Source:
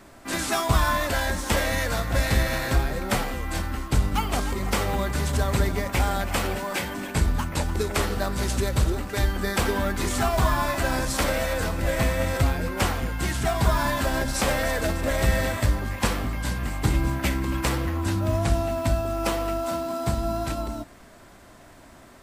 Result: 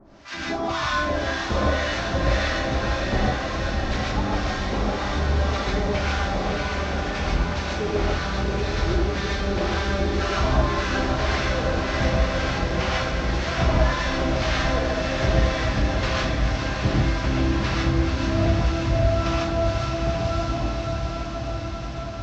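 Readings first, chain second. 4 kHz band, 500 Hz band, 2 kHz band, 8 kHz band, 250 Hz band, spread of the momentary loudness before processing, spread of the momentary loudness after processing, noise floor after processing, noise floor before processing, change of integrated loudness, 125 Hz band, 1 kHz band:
+2.5 dB, +2.0 dB, +2.0 dB, -6.5 dB, +2.5 dB, 5 LU, 5 LU, -29 dBFS, -49 dBFS, +1.5 dB, +2.0 dB, +1.5 dB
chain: CVSD coder 32 kbps; harmonic tremolo 1.9 Hz, depth 100%, crossover 950 Hz; on a send: echo that smears into a reverb 749 ms, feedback 72%, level -4.5 dB; on the sum: gated-style reverb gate 170 ms rising, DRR -3.5 dB

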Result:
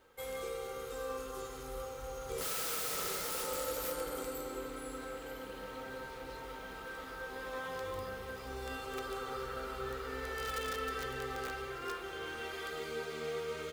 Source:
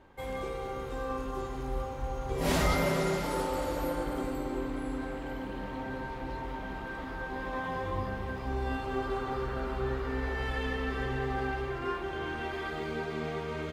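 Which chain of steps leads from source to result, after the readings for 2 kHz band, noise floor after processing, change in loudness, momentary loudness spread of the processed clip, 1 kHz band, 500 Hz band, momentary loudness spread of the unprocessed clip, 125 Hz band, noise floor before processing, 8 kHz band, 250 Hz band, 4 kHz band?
-5.0 dB, -46 dBFS, -5.5 dB, 9 LU, -6.5 dB, -5.5 dB, 8 LU, -15.0 dB, -39 dBFS, +4.0 dB, -13.0 dB, -1.0 dB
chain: pre-emphasis filter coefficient 0.9; integer overflow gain 39.5 dB; small resonant body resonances 480/1300 Hz, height 15 dB, ringing for 50 ms; trim +6.5 dB

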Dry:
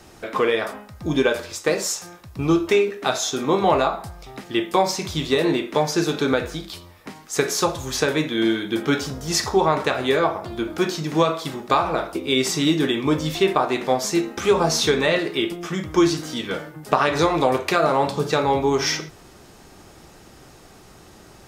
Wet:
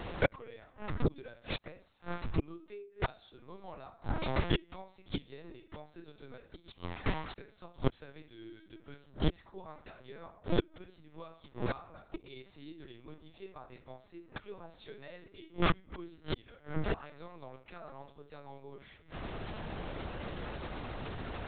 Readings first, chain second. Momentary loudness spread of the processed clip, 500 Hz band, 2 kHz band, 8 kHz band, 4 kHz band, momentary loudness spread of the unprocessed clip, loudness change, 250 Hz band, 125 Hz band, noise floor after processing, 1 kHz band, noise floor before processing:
18 LU, -20.5 dB, -17.5 dB, under -40 dB, -20.5 dB, 10 LU, -18.5 dB, -18.0 dB, -10.5 dB, -63 dBFS, -20.5 dB, -47 dBFS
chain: inverted gate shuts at -20 dBFS, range -36 dB; LPC vocoder at 8 kHz pitch kept; trim +6.5 dB

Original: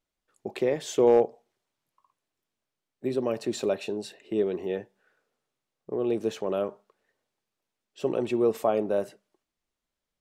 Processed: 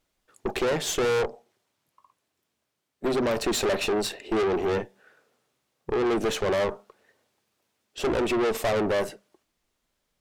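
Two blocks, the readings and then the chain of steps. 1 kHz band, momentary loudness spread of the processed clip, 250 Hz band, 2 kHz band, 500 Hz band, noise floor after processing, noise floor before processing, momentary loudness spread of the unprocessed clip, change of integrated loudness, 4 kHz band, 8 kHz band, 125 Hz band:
+4.0 dB, 9 LU, +1.5 dB, +11.5 dB, +0.5 dB, -80 dBFS, under -85 dBFS, 12 LU, +1.5 dB, +10.5 dB, +9.0 dB, +4.5 dB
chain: in parallel at +3 dB: gain riding within 4 dB 0.5 s; on the sum: valve stage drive 28 dB, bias 0.7; trim +6 dB

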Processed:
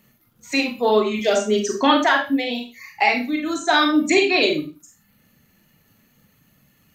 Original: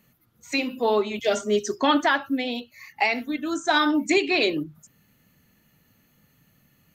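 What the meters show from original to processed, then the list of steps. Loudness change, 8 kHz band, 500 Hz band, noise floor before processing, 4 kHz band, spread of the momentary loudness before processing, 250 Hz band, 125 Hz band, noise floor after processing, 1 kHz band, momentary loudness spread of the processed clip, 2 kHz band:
+4.5 dB, +5.0 dB, +4.5 dB, -64 dBFS, +4.5 dB, 8 LU, +4.0 dB, +4.0 dB, -61 dBFS, +4.5 dB, 9 LU, +4.0 dB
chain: reverb removal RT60 0.65 s; crackle 73 per s -55 dBFS; Schroeder reverb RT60 0.32 s, combs from 29 ms, DRR 2 dB; trim +3 dB

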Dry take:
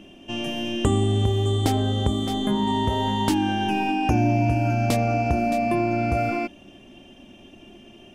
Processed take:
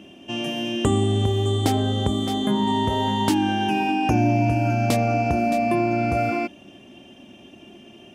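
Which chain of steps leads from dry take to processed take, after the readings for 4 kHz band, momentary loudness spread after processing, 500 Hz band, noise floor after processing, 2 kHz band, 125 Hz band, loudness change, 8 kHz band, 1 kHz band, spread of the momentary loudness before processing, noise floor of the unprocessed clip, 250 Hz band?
+1.5 dB, 6 LU, +1.5 dB, -47 dBFS, +1.5 dB, 0.0 dB, +1.0 dB, +1.5 dB, +1.5 dB, 6 LU, -48 dBFS, +1.5 dB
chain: high-pass 88 Hz; trim +1.5 dB

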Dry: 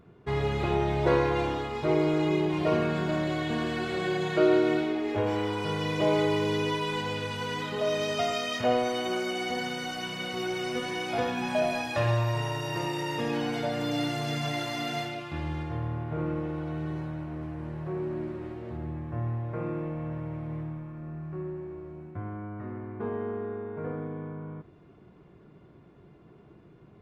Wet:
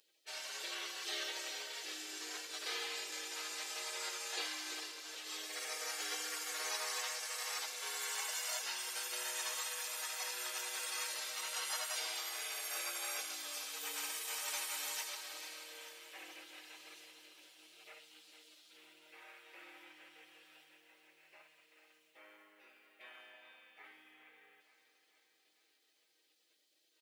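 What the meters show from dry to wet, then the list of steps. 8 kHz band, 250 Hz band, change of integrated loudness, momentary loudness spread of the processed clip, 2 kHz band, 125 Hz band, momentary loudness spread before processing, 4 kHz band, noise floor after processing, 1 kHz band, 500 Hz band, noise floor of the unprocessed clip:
+8.0 dB, -32.5 dB, -9.5 dB, 20 LU, -8.5 dB, under -40 dB, 12 LU, -4.0 dB, -76 dBFS, -15.5 dB, -25.5 dB, -55 dBFS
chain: high-pass 970 Hz 24 dB/octave; spectral gate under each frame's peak -20 dB weak; treble shelf 7.2 kHz +6.5 dB; comb 6.4 ms, depth 45%; feedback delay 443 ms, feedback 59%, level -12 dB; trim +6.5 dB

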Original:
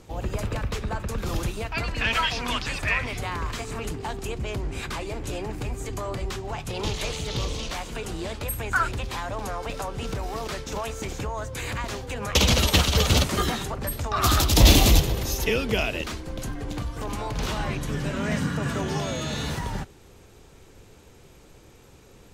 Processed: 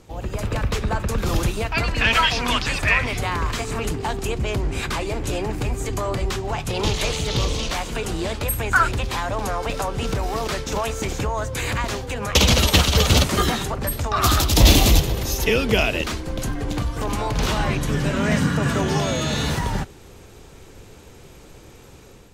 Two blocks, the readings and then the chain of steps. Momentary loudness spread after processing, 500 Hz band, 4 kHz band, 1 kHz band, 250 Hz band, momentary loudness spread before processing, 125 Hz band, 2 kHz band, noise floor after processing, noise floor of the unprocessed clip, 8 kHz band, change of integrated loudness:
10 LU, +5.5 dB, +4.0 dB, +5.5 dB, +5.0 dB, 13 LU, +4.5 dB, +5.5 dB, -45 dBFS, -51 dBFS, +4.0 dB, +4.5 dB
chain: level rider gain up to 6.5 dB

